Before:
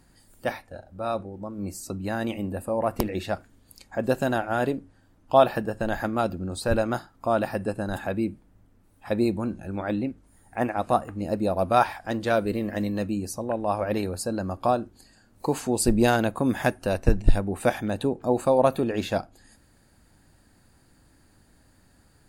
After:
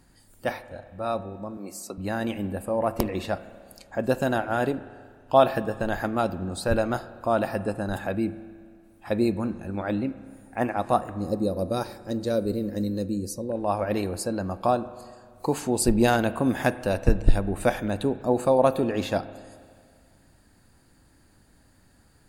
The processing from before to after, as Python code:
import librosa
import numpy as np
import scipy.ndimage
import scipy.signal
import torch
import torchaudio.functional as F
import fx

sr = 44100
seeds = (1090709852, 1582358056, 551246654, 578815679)

y = fx.highpass(x, sr, hz=330.0, slope=12, at=(1.57, 1.98))
y = fx.spec_box(y, sr, start_s=11.17, length_s=2.39, low_hz=590.0, high_hz=3700.0, gain_db=-13)
y = fx.rev_spring(y, sr, rt60_s=2.0, pass_ms=(30, 48), chirp_ms=50, drr_db=14.5)